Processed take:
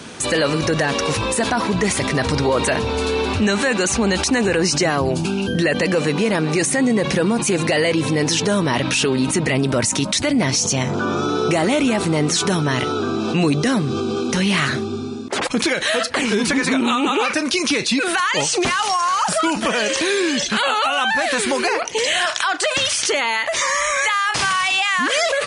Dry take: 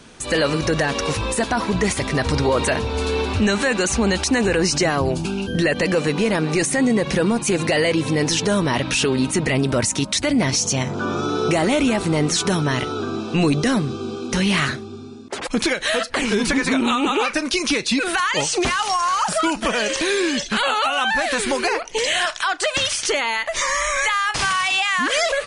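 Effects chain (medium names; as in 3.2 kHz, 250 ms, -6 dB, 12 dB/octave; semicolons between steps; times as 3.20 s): high-pass 90 Hz; in parallel at -3 dB: compressor with a negative ratio -31 dBFS, ratio -1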